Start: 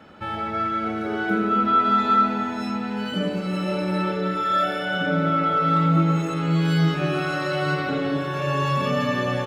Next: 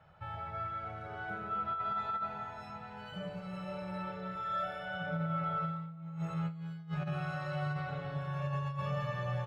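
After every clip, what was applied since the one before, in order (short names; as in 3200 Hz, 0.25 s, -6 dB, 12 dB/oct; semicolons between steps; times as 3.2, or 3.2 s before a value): EQ curve 160 Hz 0 dB, 240 Hz -30 dB, 680 Hz -5 dB, 5300 Hz -15 dB; negative-ratio compressor -27 dBFS, ratio -0.5; gain -7.5 dB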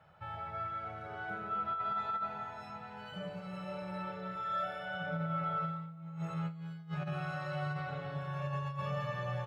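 low shelf 75 Hz -9.5 dB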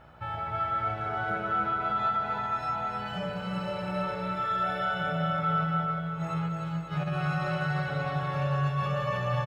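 limiter -30.5 dBFS, peak gain reduction 4.5 dB; buzz 60 Hz, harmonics 29, -66 dBFS -4 dB/oct; bouncing-ball echo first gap 0.3 s, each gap 0.8×, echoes 5; gain +8 dB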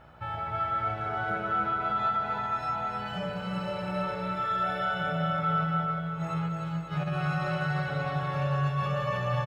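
nothing audible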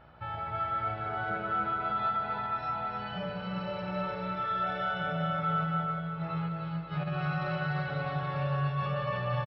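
downsampling 11025 Hz; gain -2.5 dB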